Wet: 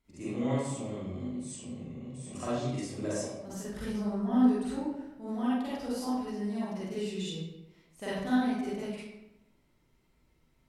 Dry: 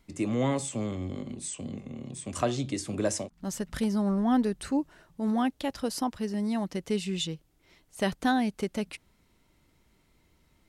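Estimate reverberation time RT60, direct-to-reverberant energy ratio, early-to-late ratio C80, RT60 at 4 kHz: 1.0 s, -10.0 dB, 0.5 dB, 0.60 s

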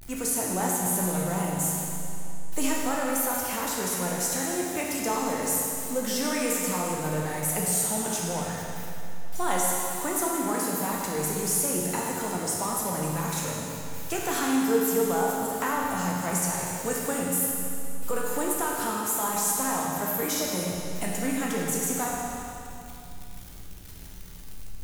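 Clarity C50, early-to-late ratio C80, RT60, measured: -1.0 dB, 0.0 dB, 2.8 s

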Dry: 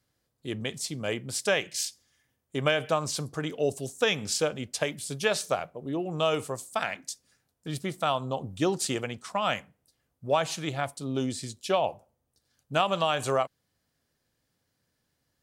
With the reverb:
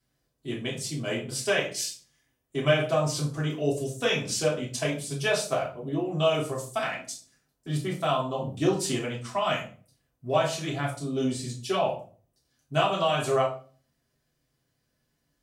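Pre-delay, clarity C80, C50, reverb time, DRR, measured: 3 ms, 12.5 dB, 8.0 dB, 0.40 s, -6.0 dB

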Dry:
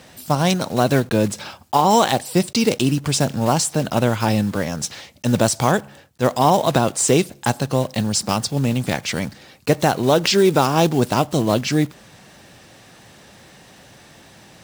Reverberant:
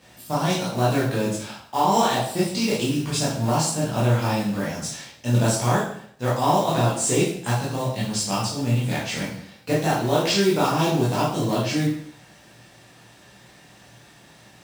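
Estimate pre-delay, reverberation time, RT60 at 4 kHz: 7 ms, 0.60 s, 0.55 s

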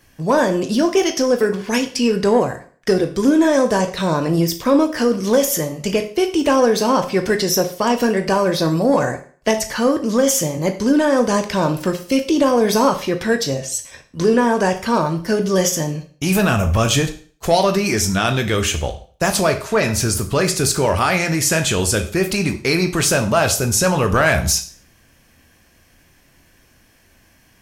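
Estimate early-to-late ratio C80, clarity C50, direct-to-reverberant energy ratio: 16.5 dB, 11.5 dB, 5.5 dB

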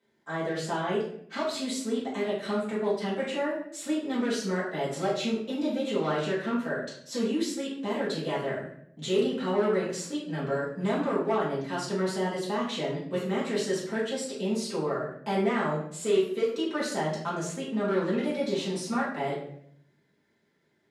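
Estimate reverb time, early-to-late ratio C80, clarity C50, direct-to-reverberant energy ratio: 0.65 s, 7.5 dB, 3.5 dB, -9.0 dB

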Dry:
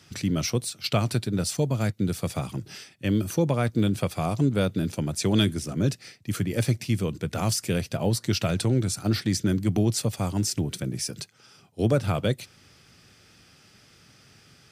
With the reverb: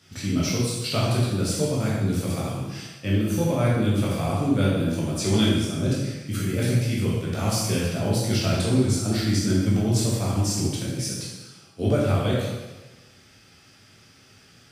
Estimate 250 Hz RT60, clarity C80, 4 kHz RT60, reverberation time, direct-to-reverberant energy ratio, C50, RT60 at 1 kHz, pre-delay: 1.1 s, 2.0 dB, 1.1 s, 1.2 s, -6.5 dB, -0.5 dB, 1.2 s, 11 ms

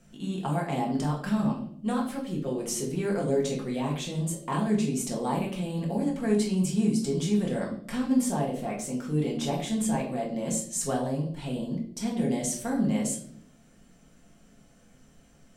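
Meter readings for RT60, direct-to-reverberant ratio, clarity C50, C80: 0.60 s, -3.5 dB, 7.0 dB, 11.0 dB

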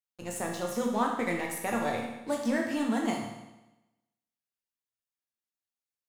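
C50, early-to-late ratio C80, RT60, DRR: 3.5 dB, 6.5 dB, 1.0 s, 0.0 dB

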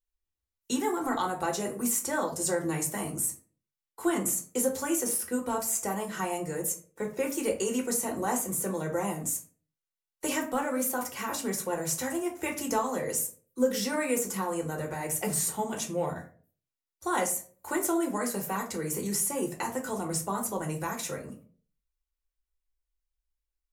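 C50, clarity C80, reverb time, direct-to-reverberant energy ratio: 11.5 dB, 16.0 dB, 0.45 s, 0.0 dB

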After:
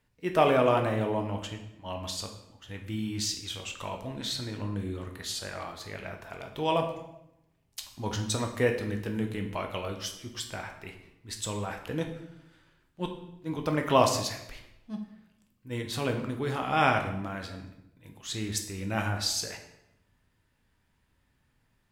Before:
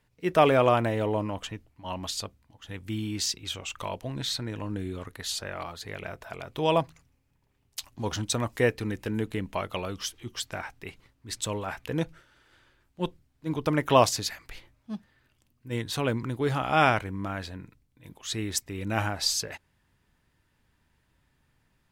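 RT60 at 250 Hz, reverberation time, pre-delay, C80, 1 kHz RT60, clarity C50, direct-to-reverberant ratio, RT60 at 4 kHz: 1.0 s, 0.85 s, 9 ms, 10.5 dB, 0.75 s, 8.0 dB, 3.5 dB, 0.65 s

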